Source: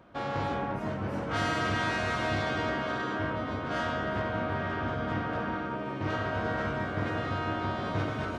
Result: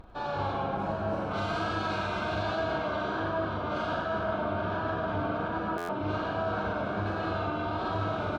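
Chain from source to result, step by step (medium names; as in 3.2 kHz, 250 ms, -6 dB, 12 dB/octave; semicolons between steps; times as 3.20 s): band-stop 1.9 kHz, Q 8.9; upward compressor, threshold -52 dBFS; graphic EQ with 31 bands 125 Hz -11 dB, 250 Hz -8 dB, 500 Hz -4 dB, 2 kHz -7 dB, 4 kHz +7 dB; vibrato 1.3 Hz 71 cents; treble shelf 3.7 kHz -11 dB; reverberation RT60 1.3 s, pre-delay 55 ms, DRR 2.5 dB; peak limiter -24.5 dBFS, peak gain reduction 6 dB; reverse bouncing-ball echo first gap 40 ms, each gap 1.5×, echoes 5; buffer glitch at 5.77 s, samples 512, times 9; Opus 48 kbps 48 kHz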